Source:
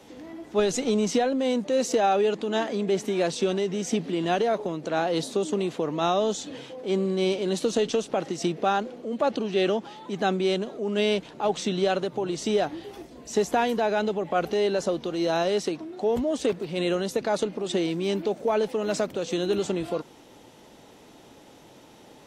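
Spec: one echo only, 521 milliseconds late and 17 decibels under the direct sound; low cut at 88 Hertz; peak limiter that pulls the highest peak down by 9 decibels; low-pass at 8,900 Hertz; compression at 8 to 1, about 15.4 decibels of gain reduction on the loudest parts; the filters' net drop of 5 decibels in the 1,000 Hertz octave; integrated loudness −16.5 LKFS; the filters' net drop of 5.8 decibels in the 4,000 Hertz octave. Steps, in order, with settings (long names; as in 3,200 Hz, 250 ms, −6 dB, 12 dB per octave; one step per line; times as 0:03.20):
high-pass filter 88 Hz
low-pass filter 8,900 Hz
parametric band 1,000 Hz −7.5 dB
parametric band 4,000 Hz −7 dB
downward compressor 8 to 1, threshold −37 dBFS
brickwall limiter −33.5 dBFS
single-tap delay 521 ms −17 dB
level +26 dB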